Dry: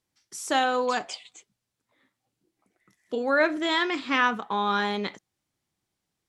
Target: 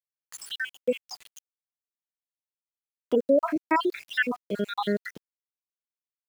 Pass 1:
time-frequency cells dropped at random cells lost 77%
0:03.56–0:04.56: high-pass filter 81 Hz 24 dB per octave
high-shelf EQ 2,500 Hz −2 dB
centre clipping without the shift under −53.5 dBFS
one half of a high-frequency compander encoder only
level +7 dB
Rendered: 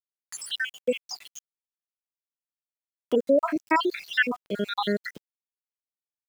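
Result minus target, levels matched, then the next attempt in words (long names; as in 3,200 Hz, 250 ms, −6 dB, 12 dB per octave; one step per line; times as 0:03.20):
4,000 Hz band +3.5 dB
time-frequency cells dropped at random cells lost 77%
0:03.56–0:04.56: high-pass filter 81 Hz 24 dB per octave
high-shelf EQ 2,500 Hz −10 dB
centre clipping without the shift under −53.5 dBFS
one half of a high-frequency compander encoder only
level +7 dB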